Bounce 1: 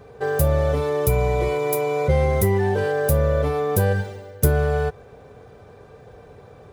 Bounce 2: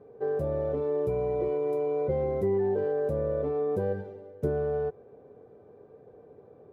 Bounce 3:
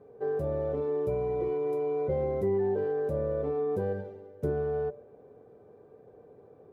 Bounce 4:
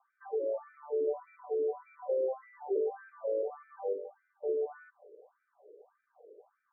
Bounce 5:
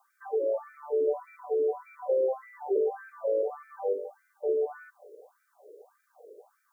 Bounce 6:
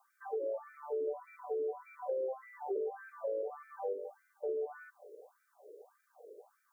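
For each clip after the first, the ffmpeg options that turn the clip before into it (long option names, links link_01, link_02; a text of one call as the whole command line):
ffmpeg -i in.wav -af "bandpass=frequency=350:width_type=q:width=1.4:csg=0,volume=-3dB" out.wav
ffmpeg -i in.wav -af "bandreject=frequency=45.13:width_type=h:width=4,bandreject=frequency=90.26:width_type=h:width=4,bandreject=frequency=135.39:width_type=h:width=4,bandreject=frequency=180.52:width_type=h:width=4,bandreject=frequency=225.65:width_type=h:width=4,bandreject=frequency=270.78:width_type=h:width=4,bandreject=frequency=315.91:width_type=h:width=4,bandreject=frequency=361.04:width_type=h:width=4,bandreject=frequency=406.17:width_type=h:width=4,bandreject=frequency=451.3:width_type=h:width=4,bandreject=frequency=496.43:width_type=h:width=4,bandreject=frequency=541.56:width_type=h:width=4,bandreject=frequency=586.69:width_type=h:width=4,bandreject=frequency=631.82:width_type=h:width=4,bandreject=frequency=676.95:width_type=h:width=4,volume=-1dB" out.wav
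ffmpeg -i in.wav -af "afftfilt=real='re*between(b*sr/1024,420*pow(1800/420,0.5+0.5*sin(2*PI*1.7*pts/sr))/1.41,420*pow(1800/420,0.5+0.5*sin(2*PI*1.7*pts/sr))*1.41)':imag='im*between(b*sr/1024,420*pow(1800/420,0.5+0.5*sin(2*PI*1.7*pts/sr))/1.41,420*pow(1800/420,0.5+0.5*sin(2*PI*1.7*pts/sr))*1.41)':win_size=1024:overlap=0.75" out.wav
ffmpeg -i in.wav -af "bass=frequency=250:gain=-8,treble=frequency=4000:gain=14,volume=5.5dB" out.wav
ffmpeg -i in.wav -af "acompressor=threshold=-33dB:ratio=2.5,volume=-3dB" out.wav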